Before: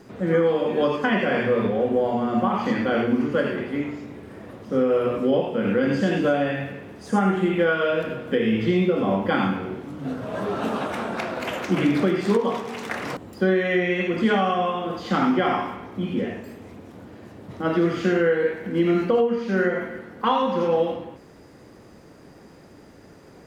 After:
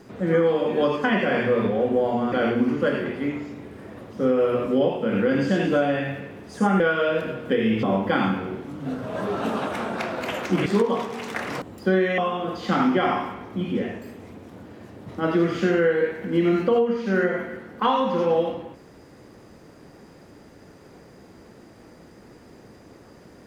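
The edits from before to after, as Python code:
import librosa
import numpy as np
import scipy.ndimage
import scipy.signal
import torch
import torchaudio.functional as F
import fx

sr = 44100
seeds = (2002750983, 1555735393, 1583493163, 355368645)

y = fx.edit(x, sr, fx.cut(start_s=2.32, length_s=0.52),
    fx.cut(start_s=7.32, length_s=0.3),
    fx.cut(start_s=8.65, length_s=0.37),
    fx.cut(start_s=11.85, length_s=0.36),
    fx.cut(start_s=13.73, length_s=0.87), tone=tone)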